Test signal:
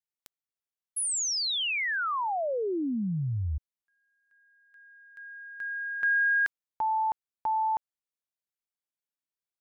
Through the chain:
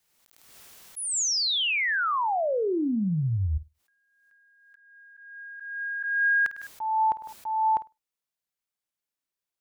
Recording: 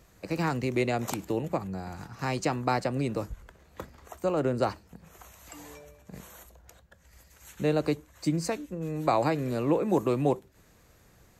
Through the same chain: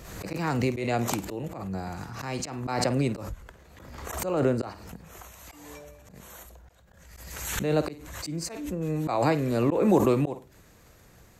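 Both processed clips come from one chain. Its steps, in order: flutter echo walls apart 8.8 m, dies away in 0.21 s; auto swell 0.226 s; backwards sustainer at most 41 dB/s; gain +3.5 dB

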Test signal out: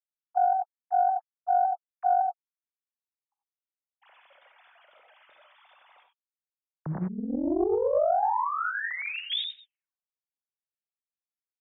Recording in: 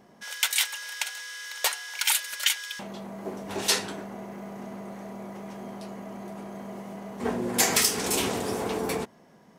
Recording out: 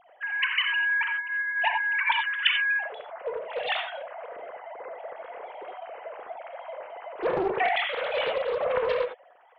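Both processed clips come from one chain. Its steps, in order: sine-wave speech; non-linear reverb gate 0.11 s rising, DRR 4.5 dB; Doppler distortion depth 0.45 ms

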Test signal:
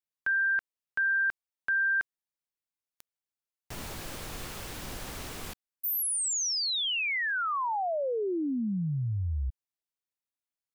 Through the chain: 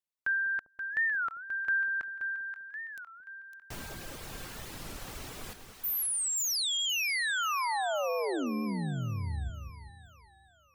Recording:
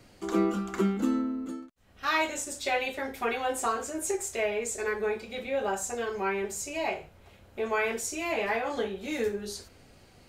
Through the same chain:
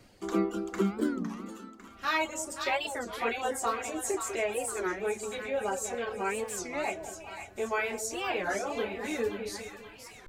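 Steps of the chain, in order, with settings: reverb removal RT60 0.84 s; split-band echo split 810 Hz, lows 0.199 s, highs 0.529 s, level -8 dB; record warp 33 1/3 rpm, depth 250 cents; gain -1.5 dB

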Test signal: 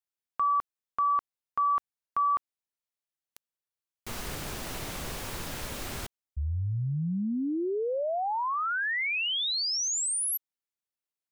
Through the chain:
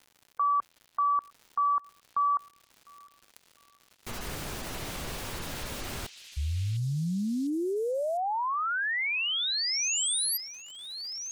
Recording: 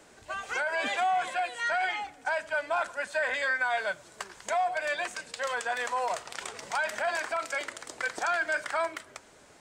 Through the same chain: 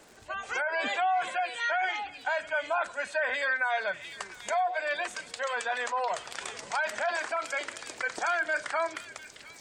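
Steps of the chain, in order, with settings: crackle 190/s -43 dBFS; spectral gate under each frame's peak -30 dB strong; delay with a stepping band-pass 0.702 s, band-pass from 3400 Hz, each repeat 0.7 oct, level -5 dB

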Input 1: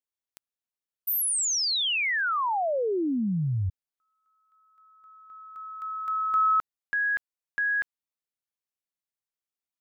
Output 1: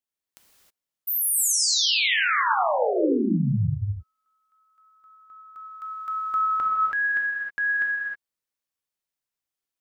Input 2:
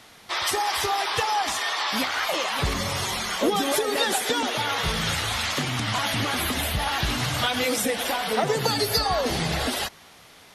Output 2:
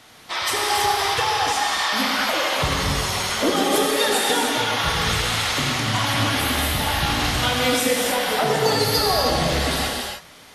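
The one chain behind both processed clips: non-linear reverb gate 0.34 s flat, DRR -2 dB

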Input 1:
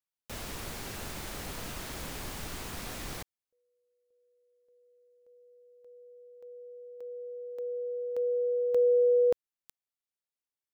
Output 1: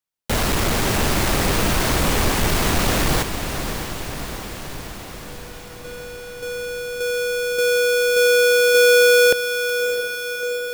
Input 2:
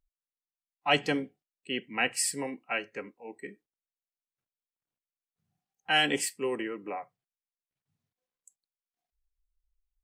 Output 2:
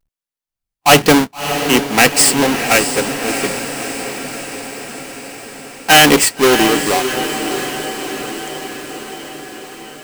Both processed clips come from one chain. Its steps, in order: half-waves squared off; sample leveller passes 2; diffused feedback echo 0.636 s, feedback 66%, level -8.5 dB; gain +8.5 dB

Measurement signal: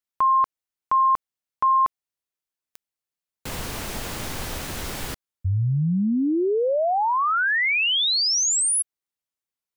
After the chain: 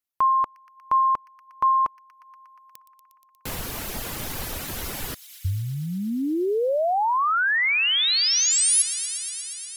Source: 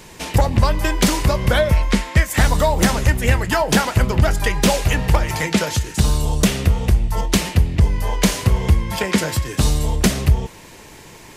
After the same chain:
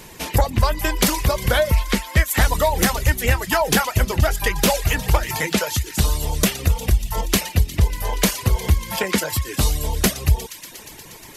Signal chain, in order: dynamic EQ 160 Hz, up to -5 dB, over -26 dBFS, Q 0.73; on a send: thin delay 0.119 s, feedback 84%, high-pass 2500 Hz, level -11 dB; on the sum: reverb removal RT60 0.66 s; bell 12000 Hz +10.5 dB 0.24 oct

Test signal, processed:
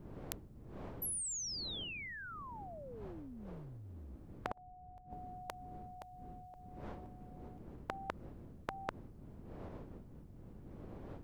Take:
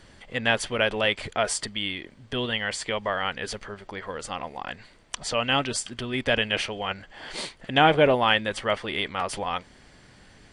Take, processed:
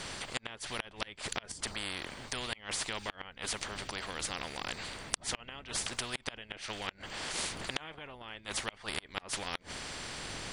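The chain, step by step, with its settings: wind noise 100 Hz -40 dBFS; flipped gate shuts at -14 dBFS, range -36 dB; spectral compressor 4:1; gain +3.5 dB

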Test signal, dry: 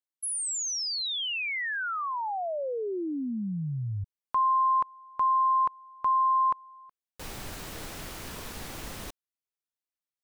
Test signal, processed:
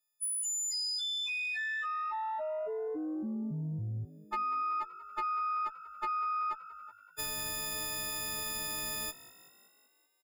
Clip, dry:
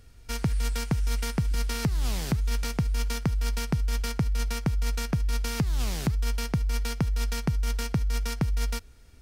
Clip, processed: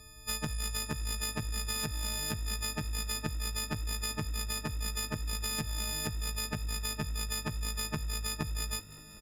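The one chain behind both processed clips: frequency quantiser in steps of 6 st; high shelf 5800 Hz -4.5 dB; compressor 3:1, threshold -36 dBFS; added harmonics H 2 -15 dB, 4 -6 dB, 5 -42 dB, 6 -14 dB, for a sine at -21 dBFS; frequency-shifting echo 0.19 s, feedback 61%, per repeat +50 Hz, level -18.5 dB

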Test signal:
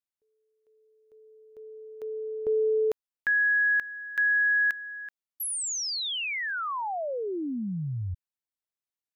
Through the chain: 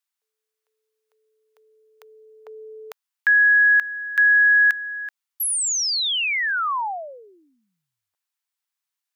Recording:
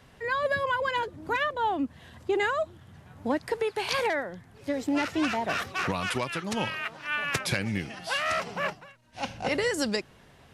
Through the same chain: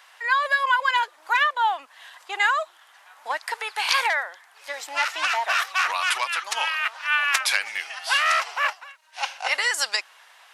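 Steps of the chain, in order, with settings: HPF 860 Hz 24 dB/oct; gain +8.5 dB

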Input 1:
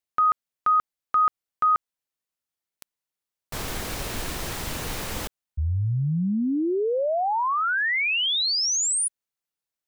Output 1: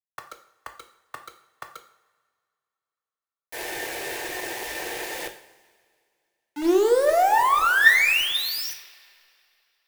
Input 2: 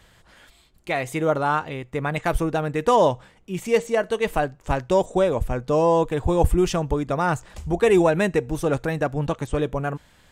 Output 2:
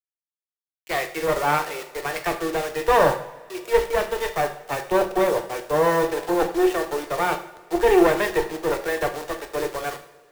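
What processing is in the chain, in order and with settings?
treble ducked by the level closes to 2800 Hz, closed at -17 dBFS; steep high-pass 320 Hz 96 dB/oct; spectral noise reduction 25 dB; gate with hold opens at -55 dBFS; band shelf 5600 Hz -11.5 dB; one-sided clip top -27 dBFS; small resonant body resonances 1800/3600 Hz, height 12 dB, ringing for 75 ms; bit-crush 6-bit; two-slope reverb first 0.57 s, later 3.8 s, from -18 dB, DRR 4.5 dB; three-band expander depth 40%; gain +1.5 dB

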